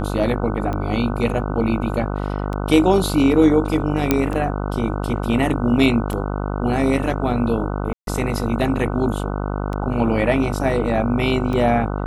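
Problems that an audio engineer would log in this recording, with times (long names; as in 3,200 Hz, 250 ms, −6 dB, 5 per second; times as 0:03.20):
mains buzz 50 Hz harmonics 30 −24 dBFS
scratch tick 33 1/3 rpm −15 dBFS
0:04.11: click −2 dBFS
0:07.93–0:08.07: drop-out 142 ms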